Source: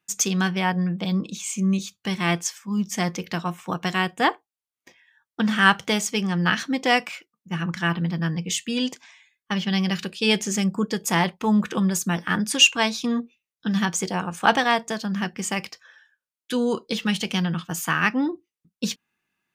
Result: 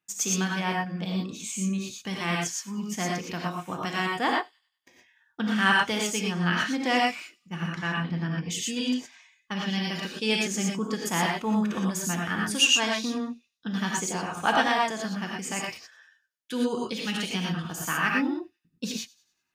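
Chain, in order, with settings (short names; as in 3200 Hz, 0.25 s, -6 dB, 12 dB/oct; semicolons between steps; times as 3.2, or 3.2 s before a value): 7.69–8.5 high shelf 9400 Hz -> 5300 Hz -10 dB; thin delay 97 ms, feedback 42%, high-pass 3800 Hz, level -20.5 dB; non-linear reverb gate 0.14 s rising, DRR -1.5 dB; gain -7 dB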